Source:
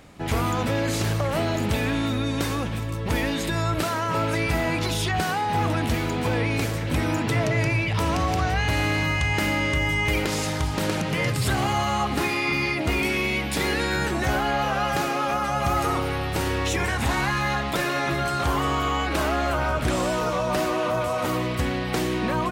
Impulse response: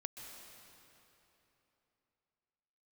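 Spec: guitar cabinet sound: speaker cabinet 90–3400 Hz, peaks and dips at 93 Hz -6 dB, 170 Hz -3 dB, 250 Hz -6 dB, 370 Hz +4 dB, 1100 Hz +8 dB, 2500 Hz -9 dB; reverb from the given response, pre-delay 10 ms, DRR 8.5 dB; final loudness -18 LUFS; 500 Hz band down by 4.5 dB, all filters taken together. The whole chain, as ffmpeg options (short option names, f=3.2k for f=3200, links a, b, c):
-filter_complex "[0:a]equalizer=f=500:t=o:g=-8,asplit=2[a][b];[1:a]atrim=start_sample=2205,adelay=10[c];[b][c]afir=irnorm=-1:irlink=0,volume=-6dB[d];[a][d]amix=inputs=2:normalize=0,highpass=90,equalizer=f=93:t=q:w=4:g=-6,equalizer=f=170:t=q:w=4:g=-3,equalizer=f=250:t=q:w=4:g=-6,equalizer=f=370:t=q:w=4:g=4,equalizer=f=1.1k:t=q:w=4:g=8,equalizer=f=2.5k:t=q:w=4:g=-9,lowpass=f=3.4k:w=0.5412,lowpass=f=3.4k:w=1.3066,volume=7.5dB"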